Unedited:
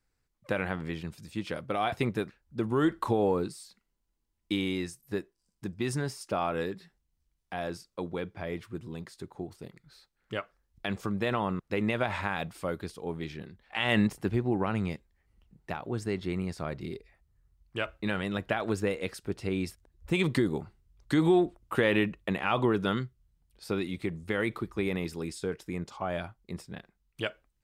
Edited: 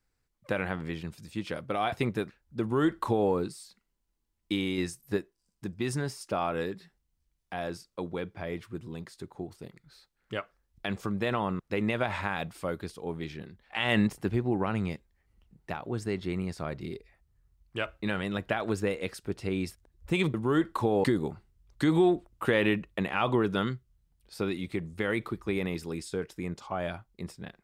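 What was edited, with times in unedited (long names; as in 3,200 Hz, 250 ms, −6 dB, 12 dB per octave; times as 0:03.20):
0:02.61–0:03.31: duplicate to 0:20.34
0:04.78–0:05.17: clip gain +3.5 dB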